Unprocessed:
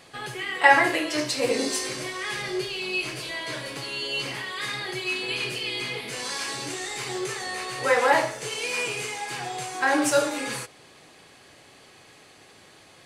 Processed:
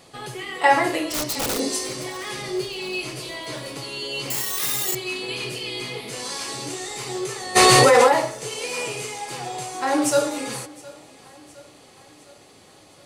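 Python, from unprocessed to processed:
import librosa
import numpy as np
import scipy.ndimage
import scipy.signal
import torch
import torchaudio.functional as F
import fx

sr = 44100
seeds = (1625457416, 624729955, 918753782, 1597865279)

y = fx.overflow_wrap(x, sr, gain_db=20.5, at=(1.09, 1.58), fade=0.02)
y = fx.peak_eq(y, sr, hz=2100.0, db=-6.0, octaves=1.7)
y = fx.notch(y, sr, hz=1600.0, q=12.0)
y = fx.echo_feedback(y, sr, ms=713, feedback_pct=56, wet_db=-22.0)
y = fx.resample_bad(y, sr, factor=6, down='none', up='zero_stuff', at=(4.3, 4.95))
y = fx.env_flatten(y, sr, amount_pct=100, at=(7.55, 8.07), fade=0.02)
y = y * librosa.db_to_amplitude(3.0)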